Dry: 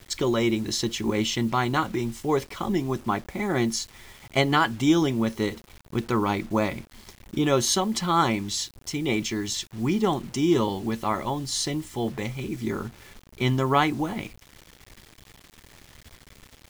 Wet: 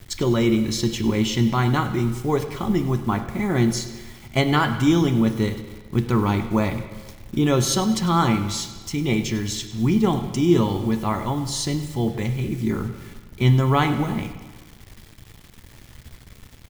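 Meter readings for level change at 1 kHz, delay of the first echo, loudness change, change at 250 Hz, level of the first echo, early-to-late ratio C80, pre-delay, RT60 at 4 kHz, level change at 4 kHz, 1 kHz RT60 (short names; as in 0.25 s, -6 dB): +1.0 dB, 99 ms, +3.5 dB, +4.5 dB, -17.0 dB, 10.5 dB, 5 ms, 1.3 s, +0.5 dB, 1.4 s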